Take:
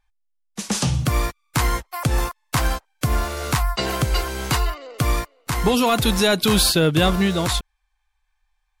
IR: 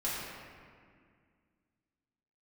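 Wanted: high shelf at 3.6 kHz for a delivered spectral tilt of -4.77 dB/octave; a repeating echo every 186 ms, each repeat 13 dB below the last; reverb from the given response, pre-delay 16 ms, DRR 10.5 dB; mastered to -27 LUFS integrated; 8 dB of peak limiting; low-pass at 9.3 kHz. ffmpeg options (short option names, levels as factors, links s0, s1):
-filter_complex "[0:a]lowpass=9300,highshelf=f=3600:g=-3.5,alimiter=limit=0.141:level=0:latency=1,aecho=1:1:186|372|558:0.224|0.0493|0.0108,asplit=2[s0][s1];[1:a]atrim=start_sample=2205,adelay=16[s2];[s1][s2]afir=irnorm=-1:irlink=0,volume=0.141[s3];[s0][s3]amix=inputs=2:normalize=0,volume=0.891"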